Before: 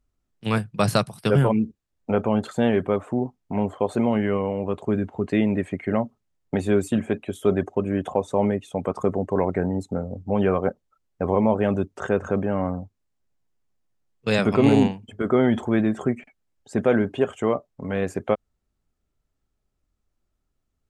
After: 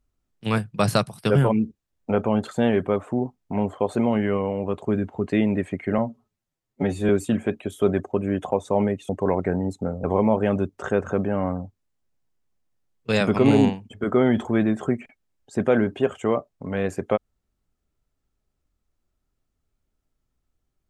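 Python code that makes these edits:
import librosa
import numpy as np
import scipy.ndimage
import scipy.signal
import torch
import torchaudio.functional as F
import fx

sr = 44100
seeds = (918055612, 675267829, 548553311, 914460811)

y = fx.edit(x, sr, fx.stretch_span(start_s=5.98, length_s=0.74, factor=1.5),
    fx.cut(start_s=8.72, length_s=0.47),
    fx.cut(start_s=10.14, length_s=1.08), tone=tone)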